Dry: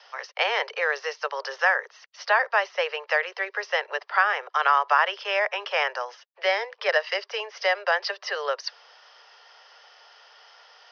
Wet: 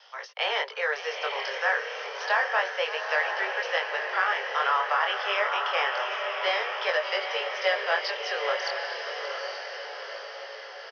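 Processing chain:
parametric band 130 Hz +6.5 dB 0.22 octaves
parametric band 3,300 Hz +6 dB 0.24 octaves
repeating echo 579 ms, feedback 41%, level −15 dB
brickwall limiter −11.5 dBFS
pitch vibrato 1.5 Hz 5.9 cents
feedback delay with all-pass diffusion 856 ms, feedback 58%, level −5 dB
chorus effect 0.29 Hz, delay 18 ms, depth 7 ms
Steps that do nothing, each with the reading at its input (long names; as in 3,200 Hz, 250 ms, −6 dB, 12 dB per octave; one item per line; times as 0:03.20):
parametric band 130 Hz: nothing at its input below 360 Hz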